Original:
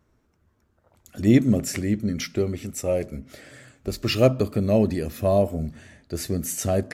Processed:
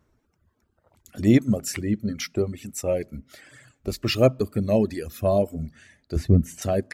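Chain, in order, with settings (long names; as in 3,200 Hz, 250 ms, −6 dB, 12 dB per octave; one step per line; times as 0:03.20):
0:06.16–0:06.62: RIAA equalisation playback
reverb reduction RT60 1.1 s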